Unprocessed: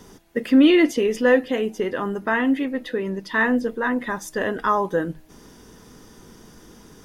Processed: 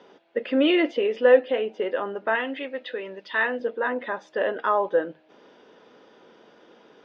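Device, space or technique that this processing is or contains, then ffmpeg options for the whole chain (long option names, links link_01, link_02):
phone earpiece: -filter_complex "[0:a]highpass=450,equalizer=frequency=560:width_type=q:width=4:gain=7,equalizer=frequency=1100:width_type=q:width=4:gain=-5,equalizer=frequency=1900:width_type=q:width=4:gain=-5,lowpass=frequency=3400:width=0.5412,lowpass=frequency=3400:width=1.3066,asettb=1/sr,asplit=3[link_01][link_02][link_03];[link_01]atrim=end=2.354[link_04];[link_02]atrim=start=2.35:end=3.6,asetpts=PTS-STARTPTS,afade=type=in:duration=0.004:curve=qsin,afade=type=out:start_time=1.246:duration=0.004:curve=qsin,tiltshelf=frequency=1400:gain=-5.5[link_05];[link_03]atrim=start=3.596[link_06];[link_04][link_05]acrossfade=duration=0.004:curve1=hsin:curve2=qsin[link_07];[link_07][link_06]acrossfade=duration=0.004:curve1=qsin:curve2=hsin"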